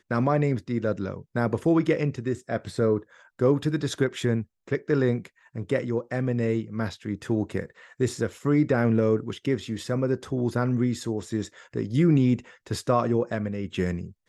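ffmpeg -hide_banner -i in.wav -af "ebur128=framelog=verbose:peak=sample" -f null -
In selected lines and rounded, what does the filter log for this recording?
Integrated loudness:
  I:         -26.3 LUFS
  Threshold: -36.4 LUFS
Loudness range:
  LRA:         2.5 LU
  Threshold: -46.5 LUFS
  LRA low:   -28.1 LUFS
  LRA high:  -25.6 LUFS
Sample peak:
  Peak:       -9.3 dBFS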